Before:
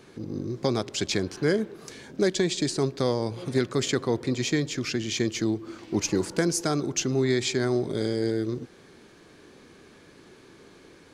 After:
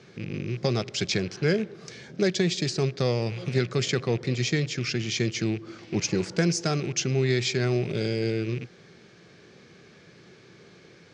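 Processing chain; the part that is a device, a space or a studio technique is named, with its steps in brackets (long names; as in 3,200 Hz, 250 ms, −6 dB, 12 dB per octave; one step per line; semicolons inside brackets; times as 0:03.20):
car door speaker with a rattle (loose part that buzzes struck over −38 dBFS, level −32 dBFS; loudspeaker in its box 82–6,700 Hz, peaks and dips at 120 Hz +6 dB, 170 Hz +6 dB, 280 Hz −8 dB, 970 Hz −7 dB, 2,200 Hz +3 dB, 5,300 Hz +3 dB)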